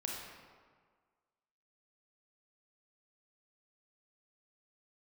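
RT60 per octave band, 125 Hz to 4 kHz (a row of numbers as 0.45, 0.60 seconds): 1.5, 1.6, 1.6, 1.7, 1.4, 1.0 seconds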